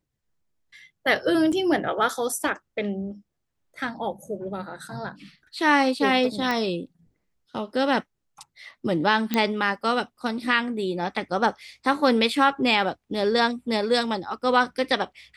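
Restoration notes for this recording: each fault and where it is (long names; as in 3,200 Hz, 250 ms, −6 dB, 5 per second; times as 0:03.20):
0:01.52–0:01.53: drop-out 6.3 ms
0:06.51: click −13 dBFS
0:09.34: click −9 dBFS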